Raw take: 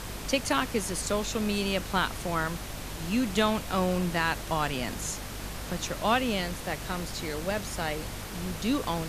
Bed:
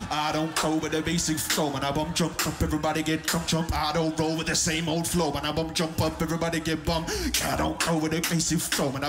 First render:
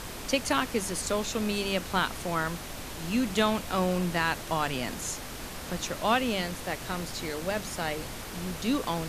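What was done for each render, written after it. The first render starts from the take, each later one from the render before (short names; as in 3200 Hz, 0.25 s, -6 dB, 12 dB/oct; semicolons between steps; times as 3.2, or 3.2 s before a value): notches 50/100/150/200 Hz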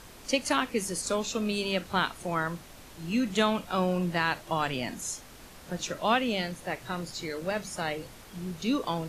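noise print and reduce 10 dB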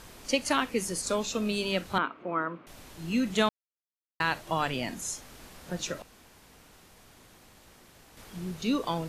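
1.98–2.67 speaker cabinet 260–2300 Hz, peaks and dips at 290 Hz +7 dB, 800 Hz -7 dB, 1200 Hz +4 dB, 1800 Hz -8 dB; 3.49–4.2 mute; 6.02–8.17 room tone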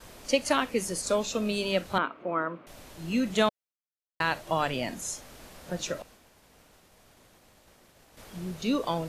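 expander -51 dBFS; bell 590 Hz +5 dB 0.54 oct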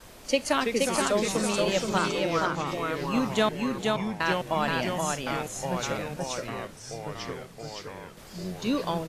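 on a send: echo 0.475 s -3 dB; on the sum: echoes that change speed 0.267 s, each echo -3 st, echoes 3, each echo -6 dB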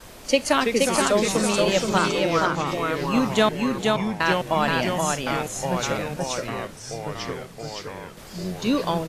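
gain +5 dB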